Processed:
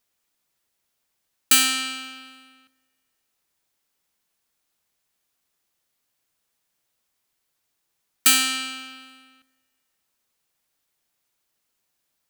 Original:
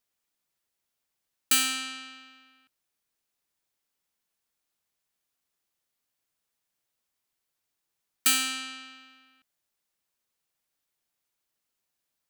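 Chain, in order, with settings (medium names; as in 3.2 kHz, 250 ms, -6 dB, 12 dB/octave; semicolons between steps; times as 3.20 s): plate-style reverb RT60 1.9 s, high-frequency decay 0.8×, DRR 18 dB; trim +6.5 dB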